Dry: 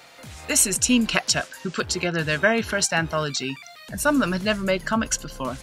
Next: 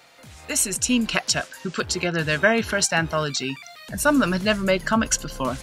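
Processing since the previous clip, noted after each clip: gain riding within 5 dB 2 s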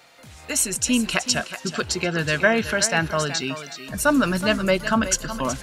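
thinning echo 372 ms, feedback 22%, high-pass 200 Hz, level -11 dB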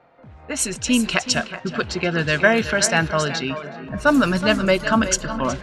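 level-controlled noise filter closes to 970 Hz, open at -15 dBFS; feedback echo behind a low-pass 406 ms, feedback 67%, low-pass 1.3 kHz, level -16 dB; trim +2.5 dB

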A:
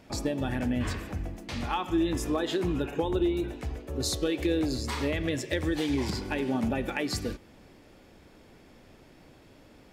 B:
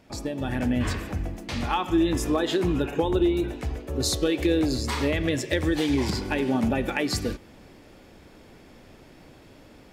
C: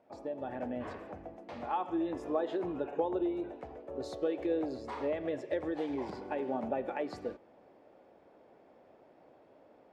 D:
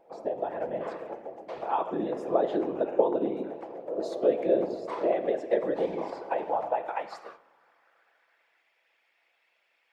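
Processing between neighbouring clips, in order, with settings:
level rider gain up to 6.5 dB; trim -2 dB
band-pass filter 640 Hz, Q 1.7; trim -3 dB
high-pass sweep 460 Hz -> 2.3 kHz, 5.84–8.73 s; whisper effect; reverberation RT60 0.75 s, pre-delay 6 ms, DRR 11 dB; trim +2 dB

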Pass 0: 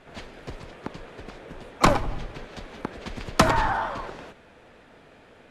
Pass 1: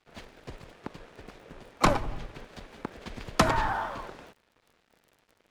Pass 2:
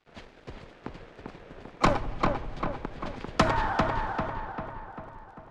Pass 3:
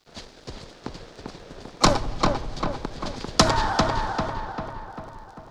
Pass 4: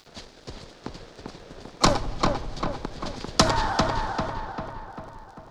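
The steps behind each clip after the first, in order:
crackle 20 per s -40 dBFS; crossover distortion -49.5 dBFS; trim -4 dB
distance through air 74 m; filtered feedback delay 395 ms, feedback 55%, low-pass 2.7 kHz, level -3 dB
resonant high shelf 3.4 kHz +10 dB, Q 1.5; trim +4.5 dB
upward compressor, threshold -44 dBFS; trim -1.5 dB

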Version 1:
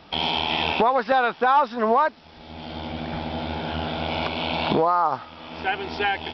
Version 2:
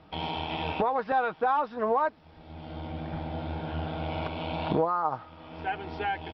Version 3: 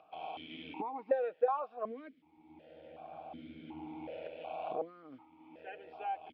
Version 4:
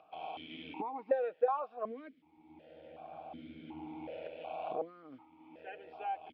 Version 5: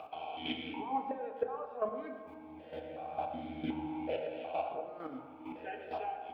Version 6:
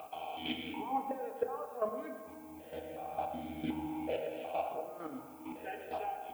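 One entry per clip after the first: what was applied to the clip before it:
low-pass 1.4 kHz 6 dB/octave; peaking EQ 82 Hz +9.5 dB 0.77 oct; comb 6.4 ms, depth 38%; trim -6 dB
dynamic bell 510 Hz, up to +6 dB, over -41 dBFS, Q 2.1; upward compressor, threshold -46 dBFS; stepped vowel filter 2.7 Hz; trim -1.5 dB
no audible change
compression 6:1, threshold -44 dBFS, peak gain reduction 19 dB; square tremolo 2.2 Hz, depth 65%, duty 15%; on a send at -3 dB: reverberation RT60 1.8 s, pre-delay 6 ms; on the sum: trim +13.5 dB
added noise violet -63 dBFS

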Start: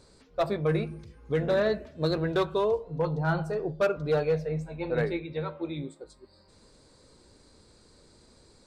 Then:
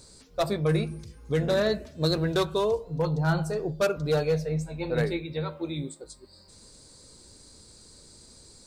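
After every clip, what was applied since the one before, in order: tone controls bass +4 dB, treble +14 dB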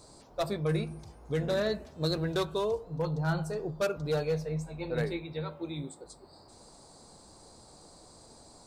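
band noise 93–950 Hz -53 dBFS; trim -5 dB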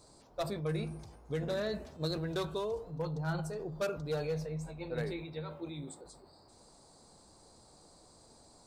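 transient shaper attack +2 dB, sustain +6 dB; trim -6 dB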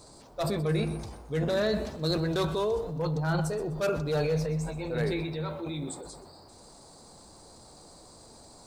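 transient shaper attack -6 dB, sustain +4 dB; bit-crushed delay 126 ms, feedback 35%, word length 11-bit, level -15 dB; trim +8 dB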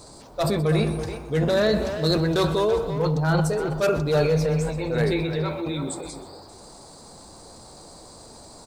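speakerphone echo 330 ms, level -8 dB; trim +6.5 dB

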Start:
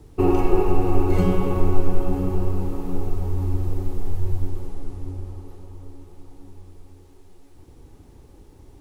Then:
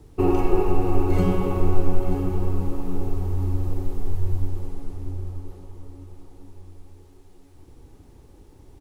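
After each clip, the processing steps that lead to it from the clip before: delay 928 ms -13.5 dB; trim -1.5 dB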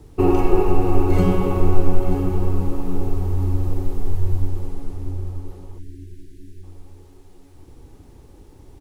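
spectral selection erased 5.79–6.64 s, 410–1500 Hz; trim +3.5 dB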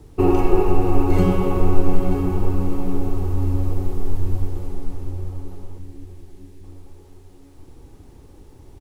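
feedback delay 766 ms, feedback 45%, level -13 dB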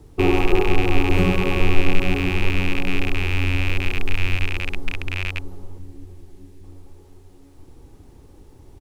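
rattle on loud lows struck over -28 dBFS, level -12 dBFS; trim -1.5 dB

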